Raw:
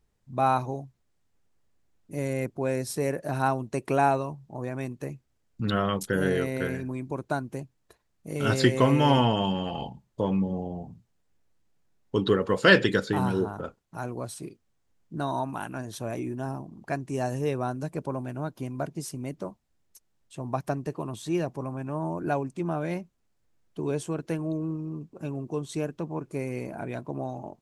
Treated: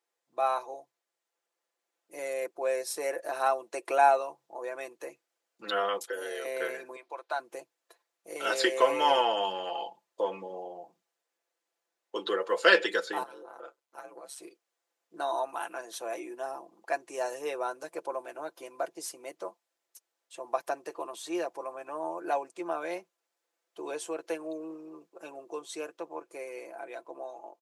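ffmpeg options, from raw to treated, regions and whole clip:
ffmpeg -i in.wav -filter_complex "[0:a]asettb=1/sr,asplit=3[link_01][link_02][link_03];[link_01]atrim=end=5.984[link_04];[link_02]atrim=start=5.98:end=6.45,asetpts=PTS-STARTPTS,afade=type=in:duration=0.004:curve=qsin,afade=type=out:start_time=0.466:duration=0.004:curve=qsin,highpass=320,acrossover=split=850|3100[link_05][link_06][link_07];[link_05]acompressor=threshold=-32dB:ratio=4[link_08];[link_06]acompressor=threshold=-44dB:ratio=4[link_09];[link_07]acompressor=threshold=-42dB:ratio=4[link_10];[link_08][link_09][link_10]amix=inputs=3:normalize=0[link_11];[link_03]atrim=start=6.446[link_12];[link_04][link_11]acrossfade=duration=0.004:curve1=hsin:curve2=qsin[link_13];[link_13][link_12]acrossfade=duration=0.004:curve1=qsin:curve2=hsin,asettb=1/sr,asplit=3[link_14][link_15][link_16];[link_14]atrim=end=6.964[link_17];[link_15]atrim=start=6.96:end=7.4,asetpts=PTS-STARTPTS,afade=type=in:duration=0.004:curve=qsin,afade=type=out:start_time=0.436:duration=0.004:curve=qsin,highpass=650,highshelf=frequency=5500:width_type=q:width=1.5:gain=-8[link_18];[link_16]atrim=start=7.396[link_19];[link_17][link_18]acrossfade=duration=0.004:curve1=hsin:curve2=qsin[link_20];[link_20][link_19]acrossfade=duration=0.004:curve1=qsin:curve2=hsin,asettb=1/sr,asplit=3[link_21][link_22][link_23];[link_21]atrim=end=13.234[link_24];[link_22]atrim=start=13.23:end=14.38,asetpts=PTS-STARTPTS,afade=type=in:duration=0.004:curve=qsin,afade=type=out:start_time=1.146:duration=0.004:curve=qsin,acompressor=threshold=-32dB:ratio=12:attack=3.2:release=140:knee=1:detection=peak,aeval=exprs='val(0)*sin(2*PI*69*n/s)':channel_layout=same[link_25];[link_23]atrim=start=14.376[link_26];[link_24][link_25]acrossfade=duration=0.004:curve1=hsin:curve2=qsin[link_27];[link_27][link_26]acrossfade=duration=0.004:curve1=qsin:curve2=hsin,highpass=frequency=430:width=0.5412,highpass=frequency=430:width=1.3066,aecho=1:1:5.9:0.59,dynaudnorm=framelen=120:gausssize=31:maxgain=4dB,volume=-5dB" out.wav

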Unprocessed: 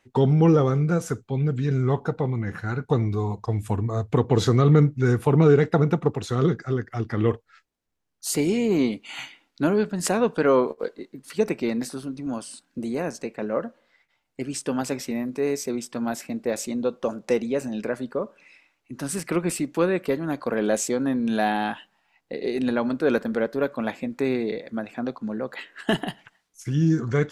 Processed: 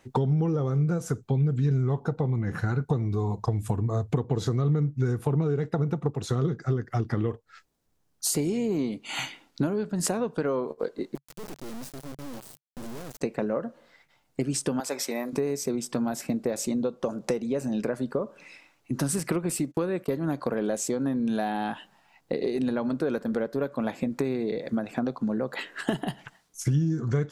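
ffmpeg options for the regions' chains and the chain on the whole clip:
ffmpeg -i in.wav -filter_complex "[0:a]asettb=1/sr,asplit=3[link_01][link_02][link_03];[link_01]atrim=end=11.154[link_04];[link_02]atrim=start=11.15:end=13.21,asetpts=PTS-STARTPTS,afade=type=in:duration=0.004:curve=qsin,afade=type=out:start_time=2.056:duration=0.004:curve=qsin,acrusher=bits=3:dc=4:mix=0:aa=0.000001,aeval=exprs='(tanh(44.7*val(0)+0.65)-tanh(0.65))/44.7':channel_layout=same[link_05];[link_03]atrim=start=13.206[link_06];[link_04][link_05]acrossfade=duration=0.004:curve1=hsin:curve2=qsin[link_07];[link_07][link_06]acrossfade=duration=0.004:curve1=qsin:curve2=hsin,asettb=1/sr,asplit=3[link_08][link_09][link_10];[link_08]atrim=end=14.804[link_11];[link_09]atrim=start=14.8:end=15.33,asetpts=PTS-STARTPTS,afade=type=in:duration=0.004:curve=qsin,afade=type=out:start_time=0.526:duration=0.004:curve=qsin,highpass=550,bandreject=frequency=2800:width=13[link_12];[link_10]atrim=start=15.326[link_13];[link_11][link_12]acrossfade=duration=0.004:curve1=hsin:curve2=qsin[link_14];[link_14][link_13]acrossfade=duration=0.004:curve1=qsin:curve2=hsin,asettb=1/sr,asplit=3[link_15][link_16][link_17];[link_15]atrim=end=19.454[link_18];[link_16]atrim=start=19.45:end=20.15,asetpts=PTS-STARTPTS,afade=type=in:duration=0.004:curve=qsin,afade=type=out:start_time=0.696:duration=0.004:curve=qsin,agate=range=-27dB:threshold=-41dB:ratio=16:release=100:detection=peak,highshelf=frequency=8900:gain=4.5[link_19];[link_17]atrim=start=20.146[link_20];[link_18][link_19]acrossfade=duration=0.004:curve1=hsin:curve2=qsin[link_21];[link_21][link_20]acrossfade=duration=0.004:curve1=qsin:curve2=hsin,equalizer=frequency=2300:width_type=o:width=1.6:gain=-5.5,acompressor=threshold=-33dB:ratio=10,equalizer=frequency=140:width_type=o:width=0.37:gain=5,volume=8.5dB" out.wav

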